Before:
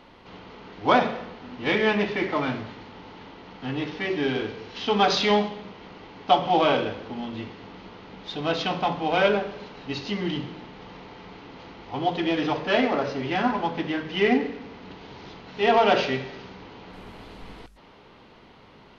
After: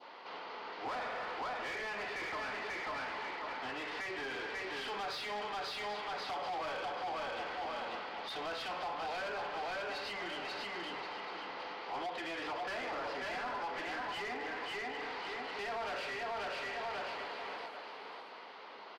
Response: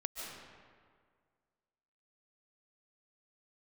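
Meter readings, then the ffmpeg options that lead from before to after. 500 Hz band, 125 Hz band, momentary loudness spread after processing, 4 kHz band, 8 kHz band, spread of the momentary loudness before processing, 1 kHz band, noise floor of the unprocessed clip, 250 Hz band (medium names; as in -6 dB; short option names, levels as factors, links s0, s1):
-16.0 dB, -24.0 dB, 5 LU, -11.5 dB, no reading, 22 LU, -12.0 dB, -51 dBFS, -22.0 dB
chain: -filter_complex "[0:a]asplit=2[s0][s1];[s1]aecho=0:1:540|1080|1620:0.501|0.115|0.0265[s2];[s0][s2]amix=inputs=2:normalize=0,aeval=exprs='0.596*sin(PI/2*2.51*val(0)/0.596)':c=same,adynamicequalizer=threshold=0.0355:dfrequency=1800:dqfactor=0.84:tfrequency=1800:tqfactor=0.84:attack=5:release=100:ratio=0.375:range=3:mode=boostabove:tftype=bell,acompressor=threshold=0.126:ratio=16,highpass=580,asplit=2[s3][s4];[s4]aecho=0:1:783:0.188[s5];[s3][s5]amix=inputs=2:normalize=0,asoftclip=type=hard:threshold=0.0501,asplit=2[s6][s7];[s7]highpass=f=720:p=1,volume=1.58,asoftclip=type=tanh:threshold=0.0501[s8];[s6][s8]amix=inputs=2:normalize=0,lowpass=f=1300:p=1,volume=0.501,equalizer=f=4700:w=3.7:g=8,volume=0.473" -ar 44100 -c:a libmp3lame -b:a 112k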